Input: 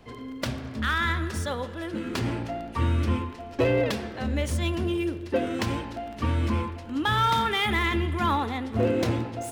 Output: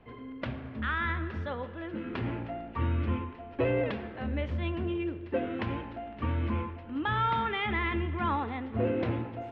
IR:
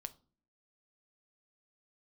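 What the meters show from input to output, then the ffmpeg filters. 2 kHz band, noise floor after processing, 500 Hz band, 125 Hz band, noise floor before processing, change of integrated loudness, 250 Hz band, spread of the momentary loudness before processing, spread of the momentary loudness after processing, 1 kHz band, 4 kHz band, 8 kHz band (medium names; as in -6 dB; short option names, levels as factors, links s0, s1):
-5.0 dB, -45 dBFS, -5.0 dB, -5.0 dB, -40 dBFS, -5.5 dB, -5.0 dB, 9 LU, 9 LU, -5.0 dB, -11.0 dB, under -35 dB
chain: -af "lowpass=f=2900:w=0.5412,lowpass=f=2900:w=1.3066,volume=0.562"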